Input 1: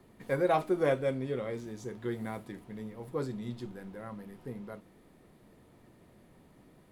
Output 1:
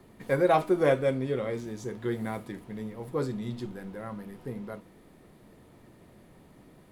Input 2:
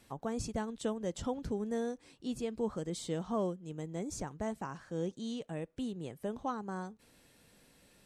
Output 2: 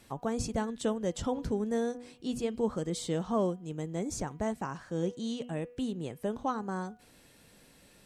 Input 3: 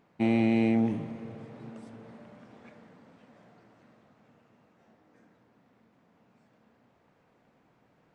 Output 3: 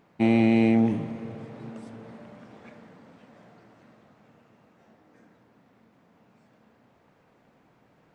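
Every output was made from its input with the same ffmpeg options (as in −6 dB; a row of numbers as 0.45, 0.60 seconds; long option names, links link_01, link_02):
-af "bandreject=frequency=243.7:width_type=h:width=4,bandreject=frequency=487.4:width_type=h:width=4,bandreject=frequency=731.1:width_type=h:width=4,bandreject=frequency=974.8:width_type=h:width=4,bandreject=frequency=1218.5:width_type=h:width=4,bandreject=frequency=1462.2:width_type=h:width=4,bandreject=frequency=1705.9:width_type=h:width=4,bandreject=frequency=1949.6:width_type=h:width=4,bandreject=frequency=2193.3:width_type=h:width=4,bandreject=frequency=2437:width_type=h:width=4,bandreject=frequency=2680.7:width_type=h:width=4,bandreject=frequency=2924.4:width_type=h:width=4,bandreject=frequency=3168.1:width_type=h:width=4,volume=4.5dB"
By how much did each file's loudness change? +4.5, +4.5, +5.0 LU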